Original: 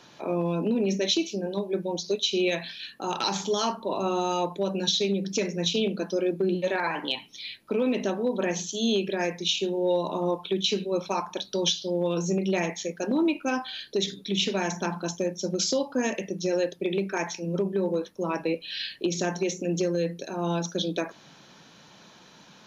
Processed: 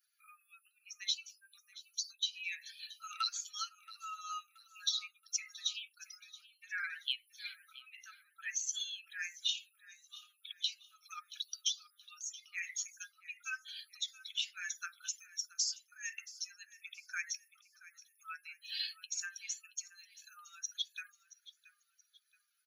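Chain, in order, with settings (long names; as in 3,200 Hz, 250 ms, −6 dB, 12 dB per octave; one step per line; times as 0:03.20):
spectral dynamics exaggerated over time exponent 2
high-shelf EQ 4,700 Hz +10.5 dB
downward compressor 6 to 1, threshold −36 dBFS, peak gain reduction 16 dB
linear-phase brick-wall high-pass 1,200 Hz
on a send: repeating echo 676 ms, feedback 34%, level −18 dB
on the sum: level +3.5 dB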